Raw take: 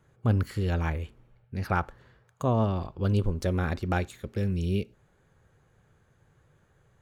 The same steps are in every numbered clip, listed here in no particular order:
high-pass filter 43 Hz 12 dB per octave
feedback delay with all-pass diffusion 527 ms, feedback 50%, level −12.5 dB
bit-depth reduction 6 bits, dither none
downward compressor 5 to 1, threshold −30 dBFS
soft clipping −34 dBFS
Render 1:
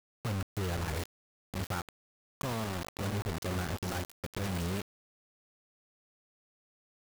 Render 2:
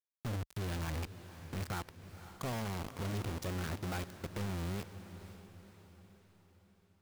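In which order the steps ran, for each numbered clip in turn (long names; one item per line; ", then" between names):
high-pass filter, then downward compressor, then soft clipping, then feedback delay with all-pass diffusion, then bit-depth reduction
downward compressor, then bit-depth reduction, then high-pass filter, then soft clipping, then feedback delay with all-pass diffusion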